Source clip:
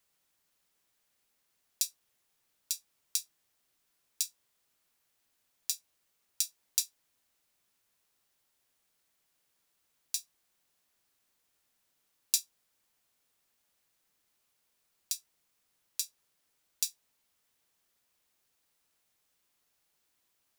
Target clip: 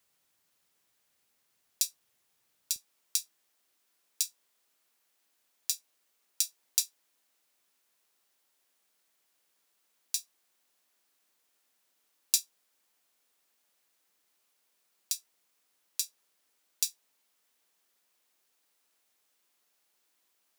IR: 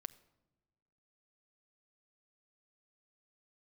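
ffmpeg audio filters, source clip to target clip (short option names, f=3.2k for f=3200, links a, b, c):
-af "asetnsamples=n=441:p=0,asendcmd='2.76 highpass f 240',highpass=56,volume=2dB"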